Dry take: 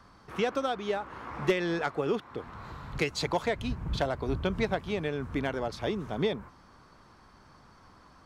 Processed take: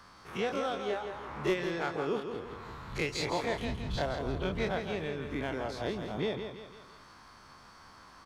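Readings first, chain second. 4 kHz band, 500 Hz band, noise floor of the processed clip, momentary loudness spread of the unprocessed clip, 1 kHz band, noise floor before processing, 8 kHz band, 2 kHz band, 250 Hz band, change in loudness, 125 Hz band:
−2.0 dB, −2.5 dB, −55 dBFS, 11 LU, −2.5 dB, −57 dBFS, −1.0 dB, −2.0 dB, −3.5 dB, −3.0 dB, −3.5 dB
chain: every bin's largest magnitude spread in time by 60 ms
repeating echo 166 ms, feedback 39%, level −7.5 dB
one half of a high-frequency compander encoder only
level −7.5 dB

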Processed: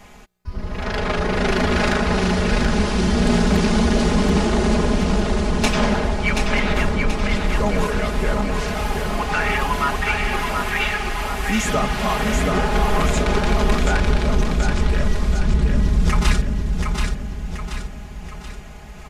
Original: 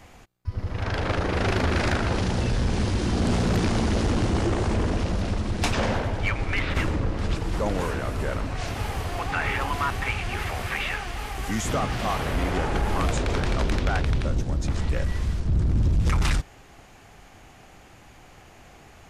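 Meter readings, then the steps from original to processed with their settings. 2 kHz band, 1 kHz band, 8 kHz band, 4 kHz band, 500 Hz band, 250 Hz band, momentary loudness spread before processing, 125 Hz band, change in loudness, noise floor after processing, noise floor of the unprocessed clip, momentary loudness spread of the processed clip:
+7.0 dB, +6.5 dB, +6.5 dB, +6.5 dB, +7.0 dB, +7.5 dB, 6 LU, +2.5 dB, +5.5 dB, −36 dBFS, −50 dBFS, 12 LU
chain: comb filter 4.8 ms, depth 89%
on a send: repeating echo 730 ms, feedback 48%, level −4.5 dB
on the sum: level +2.5 dB

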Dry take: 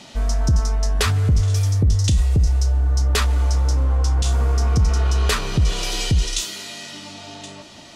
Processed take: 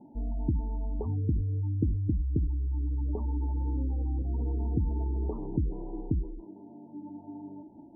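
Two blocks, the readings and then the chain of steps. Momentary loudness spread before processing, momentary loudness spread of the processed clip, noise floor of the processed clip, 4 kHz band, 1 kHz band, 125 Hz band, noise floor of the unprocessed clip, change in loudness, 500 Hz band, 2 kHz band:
15 LU, 14 LU, −51 dBFS, below −40 dB, −17.0 dB, −12.0 dB, −42 dBFS, −12.0 dB, −11.0 dB, below −40 dB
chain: formant resonators in series u
gate on every frequency bin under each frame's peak −30 dB strong
level +2.5 dB

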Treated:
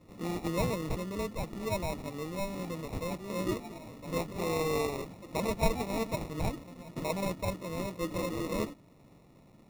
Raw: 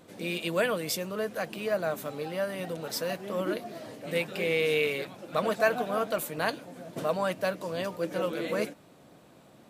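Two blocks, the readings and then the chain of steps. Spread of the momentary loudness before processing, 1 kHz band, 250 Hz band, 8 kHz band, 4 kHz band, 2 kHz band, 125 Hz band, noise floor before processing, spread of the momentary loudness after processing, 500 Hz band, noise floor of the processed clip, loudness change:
9 LU, −3.0 dB, +0.5 dB, −3.0 dB, −6.5 dB, −9.5 dB, +4.0 dB, −56 dBFS, 7 LU, −5.5 dB, −59 dBFS, −4.0 dB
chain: dynamic equaliser 310 Hz, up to +4 dB, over −44 dBFS, Q 2
decimation without filtering 28×
low-shelf EQ 240 Hz +11.5 dB
level −7.5 dB

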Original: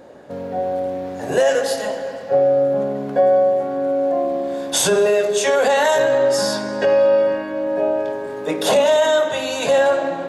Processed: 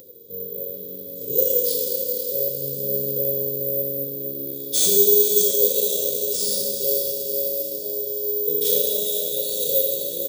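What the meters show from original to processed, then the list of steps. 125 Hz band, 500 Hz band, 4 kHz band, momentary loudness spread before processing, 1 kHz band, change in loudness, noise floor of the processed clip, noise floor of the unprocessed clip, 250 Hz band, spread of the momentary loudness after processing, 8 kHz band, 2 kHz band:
−4.0 dB, −9.5 dB, −2.0 dB, 10 LU, below −40 dB, −1.5 dB, −35 dBFS, −29 dBFS, −10.5 dB, 13 LU, +2.5 dB, below −25 dB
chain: Chebyshev band-stop filter 490–3,400 Hz, order 5
four-comb reverb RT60 1.8 s, combs from 28 ms, DRR −0.5 dB
flanger 0.75 Hz, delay 7.1 ms, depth 6.1 ms, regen +76%
high-pass filter 190 Hz 6 dB per octave
comb filter 1.8 ms, depth 78%
on a send: feedback delay with all-pass diffusion 499 ms, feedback 59%, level −8 dB
on the sum: upward compression, threshold −44 dBFS
bad sample-rate conversion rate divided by 3×, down none, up zero stuff
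level −2.5 dB

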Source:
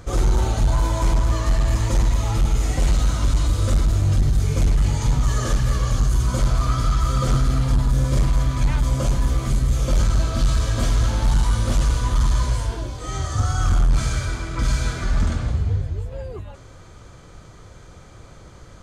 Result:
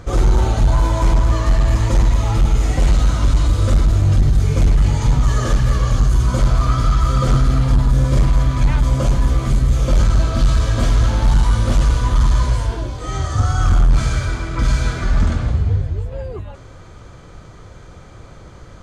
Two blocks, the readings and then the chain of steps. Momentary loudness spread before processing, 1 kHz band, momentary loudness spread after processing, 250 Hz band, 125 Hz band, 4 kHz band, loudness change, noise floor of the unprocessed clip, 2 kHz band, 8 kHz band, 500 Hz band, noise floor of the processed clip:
5 LU, +4.0 dB, 5 LU, +4.5 dB, +4.5 dB, +2.0 dB, +4.5 dB, −44 dBFS, +3.5 dB, −0.5 dB, +4.5 dB, −40 dBFS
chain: high-shelf EQ 5,400 Hz −8 dB
level +4.5 dB

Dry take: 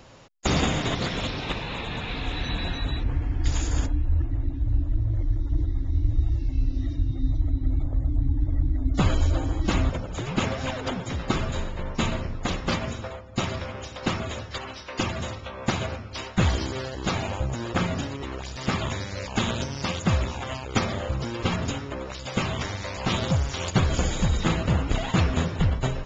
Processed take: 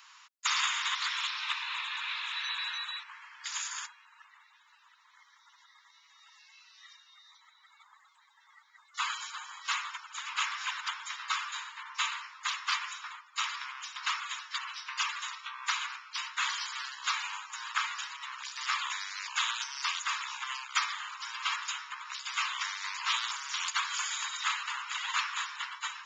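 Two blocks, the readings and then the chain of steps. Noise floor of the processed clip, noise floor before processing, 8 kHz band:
−64 dBFS, −38 dBFS, can't be measured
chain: Butterworth high-pass 970 Hz 72 dB per octave

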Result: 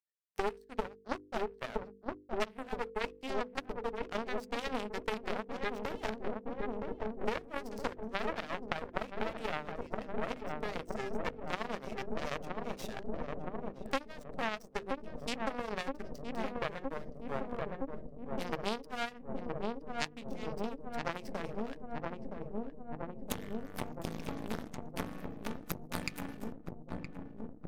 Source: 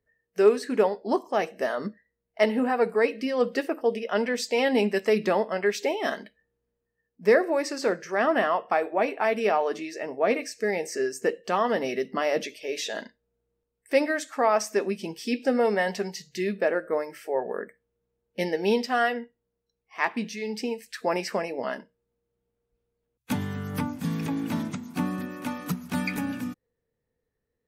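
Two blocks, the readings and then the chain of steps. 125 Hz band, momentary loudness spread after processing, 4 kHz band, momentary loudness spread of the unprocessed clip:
−8.5 dB, 6 LU, −8.5 dB, 10 LU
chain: asymmetric clip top −28 dBFS, bottom −10.5 dBFS
upward compression, threshold −37 dBFS
power curve on the samples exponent 3
mains-hum notches 50/100/150/200/250/300/350/400/450/500 Hz
on a send: feedback echo with a low-pass in the loop 968 ms, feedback 81%, low-pass 860 Hz, level −7 dB
on the sum: downward compressor 8 to 1, threshold −48 dBFS, peak gain reduction 25 dB
level +17 dB

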